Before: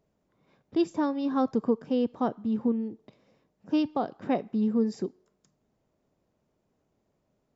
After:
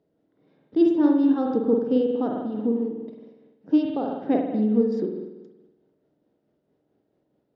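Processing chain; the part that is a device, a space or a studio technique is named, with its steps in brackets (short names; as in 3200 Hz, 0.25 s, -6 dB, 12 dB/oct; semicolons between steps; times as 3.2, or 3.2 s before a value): combo amplifier with spring reverb and tremolo (spring tank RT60 1.1 s, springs 47 ms, chirp 35 ms, DRR 0.5 dB; tremolo 4.6 Hz, depth 31%; speaker cabinet 86–4600 Hz, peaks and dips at 100 Hz -4 dB, 300 Hz +9 dB, 460 Hz +6 dB, 1100 Hz -7 dB, 2400 Hz -6 dB)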